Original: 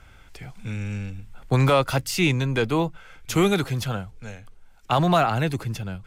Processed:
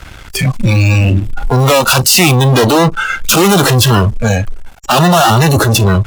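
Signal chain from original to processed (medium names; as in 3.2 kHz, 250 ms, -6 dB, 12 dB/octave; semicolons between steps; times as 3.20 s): fuzz box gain 46 dB, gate -52 dBFS; spectral noise reduction 16 dB; trim +6.5 dB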